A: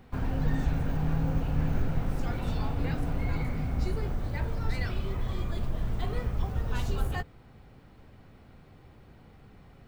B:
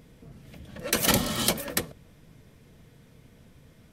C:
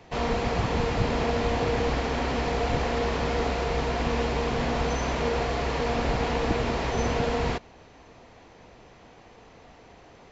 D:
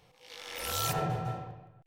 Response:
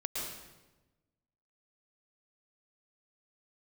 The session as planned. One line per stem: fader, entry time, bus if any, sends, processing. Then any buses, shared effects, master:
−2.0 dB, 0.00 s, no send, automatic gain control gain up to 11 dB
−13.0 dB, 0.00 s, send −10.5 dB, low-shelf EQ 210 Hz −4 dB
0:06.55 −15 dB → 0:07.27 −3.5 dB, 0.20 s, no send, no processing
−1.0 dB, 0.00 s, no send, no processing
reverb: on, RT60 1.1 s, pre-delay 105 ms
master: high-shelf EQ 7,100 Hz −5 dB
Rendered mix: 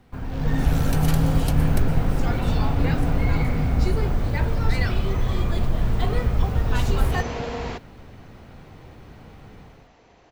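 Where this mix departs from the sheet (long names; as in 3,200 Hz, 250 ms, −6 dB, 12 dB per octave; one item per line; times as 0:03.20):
stem D −1.0 dB → −7.5 dB
master: missing high-shelf EQ 7,100 Hz −5 dB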